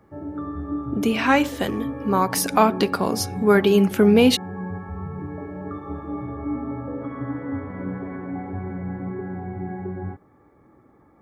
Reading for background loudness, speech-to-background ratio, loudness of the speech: -31.5 LUFS, 11.5 dB, -20.0 LUFS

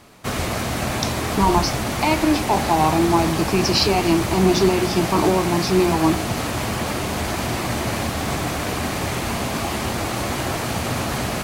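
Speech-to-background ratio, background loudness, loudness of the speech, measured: 4.0 dB, -24.0 LUFS, -20.0 LUFS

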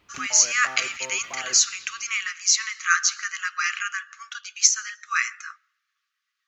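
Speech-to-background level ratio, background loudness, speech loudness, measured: 17.0 dB, -39.0 LUFS, -22.0 LUFS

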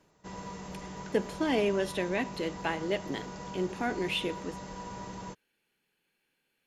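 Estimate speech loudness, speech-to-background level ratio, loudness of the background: -32.5 LUFS, 10.0 dB, -42.5 LUFS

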